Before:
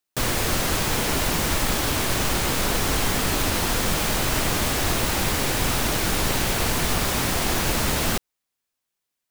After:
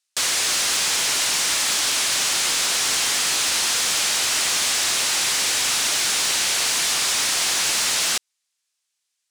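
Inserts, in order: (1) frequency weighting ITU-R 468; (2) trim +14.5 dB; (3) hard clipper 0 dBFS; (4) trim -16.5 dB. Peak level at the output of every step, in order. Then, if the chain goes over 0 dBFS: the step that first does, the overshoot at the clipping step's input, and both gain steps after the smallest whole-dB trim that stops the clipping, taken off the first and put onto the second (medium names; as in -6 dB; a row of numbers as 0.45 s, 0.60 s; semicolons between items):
-5.0 dBFS, +9.5 dBFS, 0.0 dBFS, -16.5 dBFS; step 2, 9.5 dB; step 2 +4.5 dB, step 4 -6.5 dB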